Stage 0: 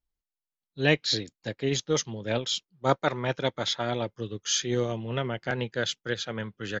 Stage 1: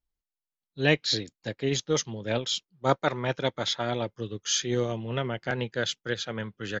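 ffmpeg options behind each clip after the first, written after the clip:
ffmpeg -i in.wav -af anull out.wav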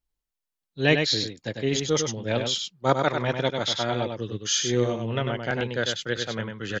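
ffmpeg -i in.wav -af "aecho=1:1:98:0.531,volume=2dB" out.wav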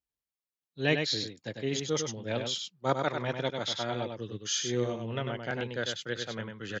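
ffmpeg -i in.wav -af "highpass=78,volume=-6.5dB" out.wav

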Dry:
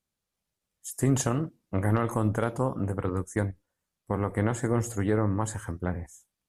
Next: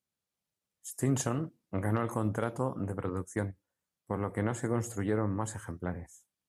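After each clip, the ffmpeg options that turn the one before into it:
ffmpeg -i in.wav -af "highpass=86,volume=-4.5dB" out.wav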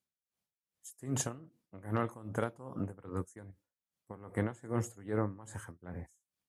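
ffmpeg -i in.wav -af "aeval=exprs='val(0)*pow(10,-19*(0.5-0.5*cos(2*PI*2.5*n/s))/20)':channel_layout=same" out.wav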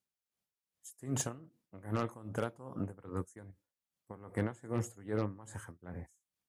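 ffmpeg -i in.wav -af "aeval=exprs='0.141*(cos(1*acos(clip(val(0)/0.141,-1,1)))-cos(1*PI/2))+0.02*(cos(5*acos(clip(val(0)/0.141,-1,1)))-cos(5*PI/2))+0.0112*(cos(7*acos(clip(val(0)/0.141,-1,1)))-cos(7*PI/2))':channel_layout=same,volume=-2.5dB" out.wav

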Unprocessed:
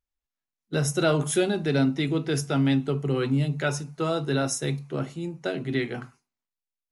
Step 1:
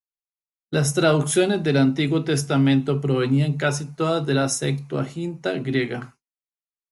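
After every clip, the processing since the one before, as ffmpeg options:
ffmpeg -i in.wav -af "agate=range=-33dB:threshold=-42dB:ratio=3:detection=peak,volume=4.5dB" out.wav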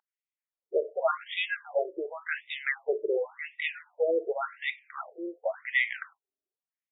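ffmpeg -i in.wav -af "equalizer=frequency=250:width_type=o:width=1:gain=-5,equalizer=frequency=500:width_type=o:width=1:gain=7,equalizer=frequency=2000:width_type=o:width=1:gain=12,aeval=exprs='val(0)+0.0141*(sin(2*PI*50*n/s)+sin(2*PI*2*50*n/s)/2+sin(2*PI*3*50*n/s)/3+sin(2*PI*4*50*n/s)/4+sin(2*PI*5*50*n/s)/5)':channel_layout=same,afftfilt=real='re*between(b*sr/1024,440*pow(2700/440,0.5+0.5*sin(2*PI*0.9*pts/sr))/1.41,440*pow(2700/440,0.5+0.5*sin(2*PI*0.9*pts/sr))*1.41)':imag='im*between(b*sr/1024,440*pow(2700/440,0.5+0.5*sin(2*PI*0.9*pts/sr))/1.41,440*pow(2700/440,0.5+0.5*sin(2*PI*0.9*pts/sr))*1.41)':win_size=1024:overlap=0.75,volume=-6dB" out.wav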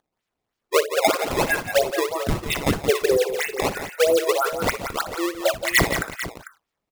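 ffmpeg -i in.wav -filter_complex "[0:a]asplit=2[link_01][link_02];[link_02]acompressor=threshold=-35dB:ratio=6,volume=2.5dB[link_03];[link_01][link_03]amix=inputs=2:normalize=0,acrusher=samples=17:mix=1:aa=0.000001:lfo=1:lforange=27.2:lforate=3.1,aecho=1:1:59|173|447:0.188|0.335|0.224,volume=5.5dB" out.wav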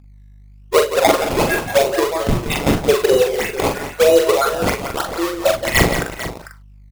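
ffmpeg -i in.wav -filter_complex "[0:a]aeval=exprs='val(0)+0.00316*(sin(2*PI*50*n/s)+sin(2*PI*2*50*n/s)/2+sin(2*PI*3*50*n/s)/3+sin(2*PI*4*50*n/s)/4+sin(2*PI*5*50*n/s)/5)':channel_layout=same,asplit=2[link_01][link_02];[link_02]acrusher=samples=18:mix=1:aa=0.000001:lfo=1:lforange=10.8:lforate=0.89,volume=-3.5dB[link_03];[link_01][link_03]amix=inputs=2:normalize=0,asplit=2[link_04][link_05];[link_05]adelay=42,volume=-5dB[link_06];[link_04][link_06]amix=inputs=2:normalize=0,volume=1dB" out.wav

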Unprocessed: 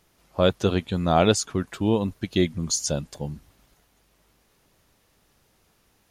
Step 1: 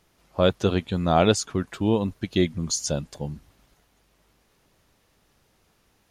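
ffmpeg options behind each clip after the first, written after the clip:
ffmpeg -i in.wav -af "highshelf=frequency=8700:gain=-5" out.wav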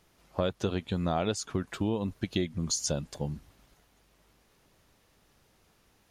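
ffmpeg -i in.wav -af "acompressor=threshold=-25dB:ratio=5,volume=-1dB" out.wav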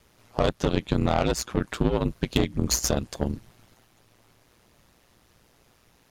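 ffmpeg -i in.wav -af "aeval=exprs='0.211*(cos(1*acos(clip(val(0)/0.211,-1,1)))-cos(1*PI/2))+0.0211*(cos(8*acos(clip(val(0)/0.211,-1,1)))-cos(8*PI/2))':channel_layout=same,aeval=exprs='val(0)*sin(2*PI*60*n/s)':channel_layout=same,volume=8dB" out.wav

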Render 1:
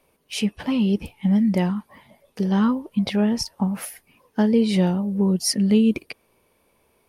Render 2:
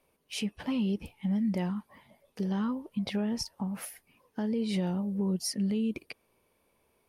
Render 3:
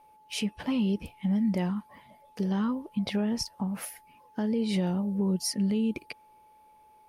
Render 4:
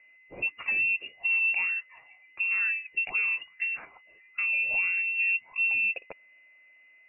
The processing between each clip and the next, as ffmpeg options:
ffmpeg -i in.wav -af "alimiter=limit=-15.5dB:level=0:latency=1:release=165,volume=-7.5dB" out.wav
ffmpeg -i in.wav -af "aeval=exprs='val(0)+0.00126*sin(2*PI*860*n/s)':channel_layout=same,volume=2.5dB" out.wav
ffmpeg -i in.wav -af "lowpass=frequency=2500:width_type=q:width=0.5098,lowpass=frequency=2500:width_type=q:width=0.6013,lowpass=frequency=2500:width_type=q:width=0.9,lowpass=frequency=2500:width_type=q:width=2.563,afreqshift=-2900" out.wav

